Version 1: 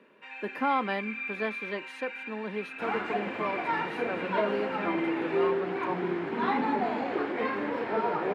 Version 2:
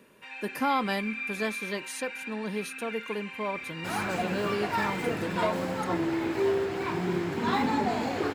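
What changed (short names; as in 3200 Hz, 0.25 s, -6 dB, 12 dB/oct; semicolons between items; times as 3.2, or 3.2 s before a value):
first sound: add bell 7200 Hz -11.5 dB 0.92 oct; second sound: entry +1.05 s; master: remove three-band isolator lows -20 dB, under 190 Hz, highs -24 dB, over 3200 Hz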